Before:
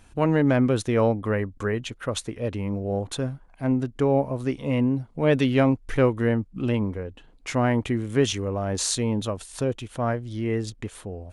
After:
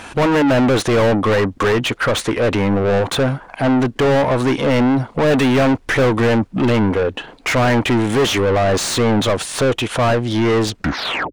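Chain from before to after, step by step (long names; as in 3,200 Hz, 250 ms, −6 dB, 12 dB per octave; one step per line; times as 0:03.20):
turntable brake at the end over 0.63 s
mid-hump overdrive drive 35 dB, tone 2,400 Hz, clips at −7.5 dBFS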